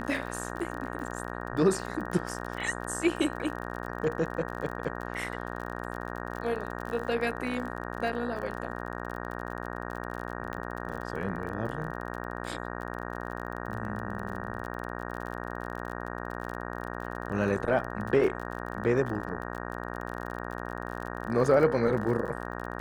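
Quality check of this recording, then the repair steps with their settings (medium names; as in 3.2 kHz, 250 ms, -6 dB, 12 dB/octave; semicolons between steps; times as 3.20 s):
buzz 60 Hz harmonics 31 -37 dBFS
crackle 36 per s -36 dBFS
10.53 s: pop -23 dBFS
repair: de-click; de-hum 60 Hz, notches 31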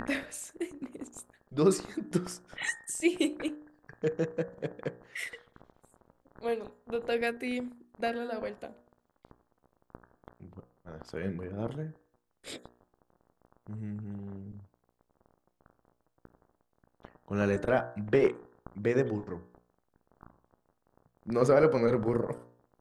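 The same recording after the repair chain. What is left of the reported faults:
10.53 s: pop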